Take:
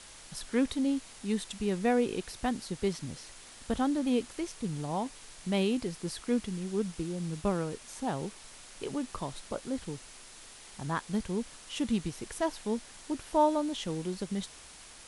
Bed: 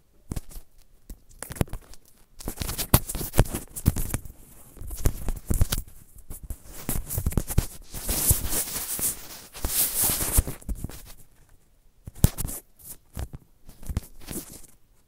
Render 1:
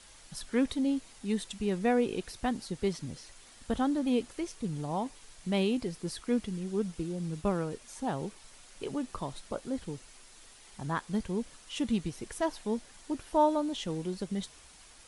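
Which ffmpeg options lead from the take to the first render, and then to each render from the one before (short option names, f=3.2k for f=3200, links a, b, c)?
-af "afftdn=nr=6:nf=-51"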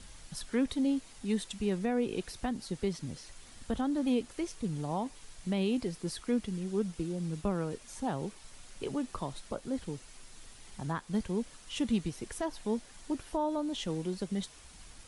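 -filter_complex "[0:a]acrossover=split=230[a][b];[a]acompressor=mode=upward:threshold=-41dB:ratio=2.5[c];[b]alimiter=level_in=0.5dB:limit=-24dB:level=0:latency=1:release=207,volume=-0.5dB[d];[c][d]amix=inputs=2:normalize=0"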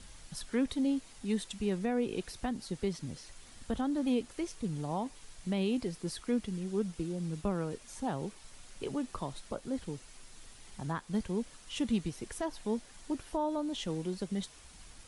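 -af "volume=-1dB"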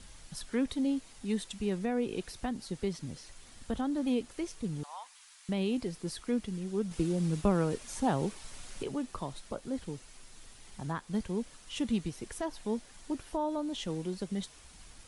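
-filter_complex "[0:a]asettb=1/sr,asplit=3[a][b][c];[a]atrim=end=4.834[d];[b]atrim=start=4.83:end=5.49,asetpts=PTS-STARTPTS,afade=t=in:d=0.004:c=qsin,afade=t=out:st=0.656:d=0.004:c=qsin,highpass=f=1k:w=0.5412,highpass=f=1k:w=1.3066[e];[c]atrim=start=5.486[f];[d][e]acrossfade=d=0.004:c1=hsin:c2=qsin[g];[g][f]acrossfade=d=0.004:c1=qsin:c2=hsin,asettb=1/sr,asplit=3[h][i][j];[h]atrim=end=6.914[k];[i]atrim=start=6.91:end=8.83,asetpts=PTS-STARTPTS,afade=t=in:d=0.004:c=qsin,afade=t=out:st=1.916:d=0.004:c=qsin,acontrast=52[l];[j]atrim=start=8.826[m];[k][l]acrossfade=d=0.004:c1=hsin:c2=qsin[n];[n][m]acrossfade=d=0.004:c1=qsin:c2=hsin"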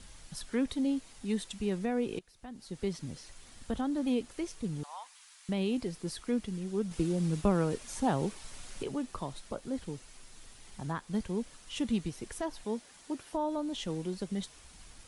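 -filter_complex "[0:a]asettb=1/sr,asplit=3[a][b][c];[a]atrim=end=12.644[d];[b]atrim=start=12.64:end=13.35,asetpts=PTS-STARTPTS,afade=t=in:d=0.004:c=qsin,afade=t=out:st=0.706:d=0.004:c=qsin,highpass=f=210:p=1[e];[c]atrim=start=13.346[f];[d][e]acrossfade=d=0.004:c1=hsin:c2=qsin[g];[g][f]acrossfade=d=0.004:c1=qsin:c2=hsin,asplit=2[h][i];[h]atrim=end=2.19,asetpts=PTS-STARTPTS,afade=t=out:st=2.186:d=0.004:c=hsin:silence=0.11885[j];[i]atrim=start=2.19,asetpts=PTS-STARTPTS,afade=t=in:d=0.68:c=qua:silence=0.11885[k];[j][k]concat=n=2:v=0:a=1"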